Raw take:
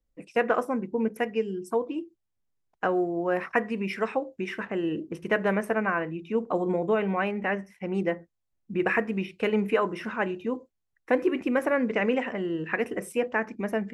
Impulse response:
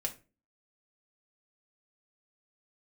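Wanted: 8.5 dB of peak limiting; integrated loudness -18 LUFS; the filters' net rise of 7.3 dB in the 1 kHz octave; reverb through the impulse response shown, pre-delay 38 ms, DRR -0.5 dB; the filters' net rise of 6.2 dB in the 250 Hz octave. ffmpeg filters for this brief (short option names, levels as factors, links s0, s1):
-filter_complex "[0:a]equalizer=f=250:t=o:g=7.5,equalizer=f=1000:t=o:g=9,alimiter=limit=0.224:level=0:latency=1,asplit=2[s0][s1];[1:a]atrim=start_sample=2205,adelay=38[s2];[s1][s2]afir=irnorm=-1:irlink=0,volume=0.891[s3];[s0][s3]amix=inputs=2:normalize=0,volume=1.58"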